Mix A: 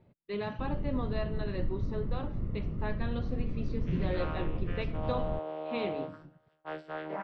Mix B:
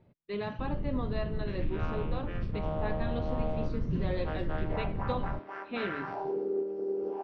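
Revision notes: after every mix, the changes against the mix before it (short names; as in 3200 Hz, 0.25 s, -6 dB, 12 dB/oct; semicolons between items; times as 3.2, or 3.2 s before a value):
second sound: entry -2.40 s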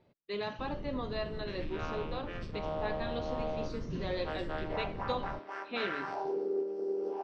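master: add tone controls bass -9 dB, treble +12 dB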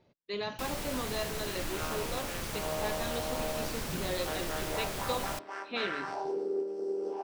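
first sound: remove running mean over 55 samples; master: remove air absorption 140 m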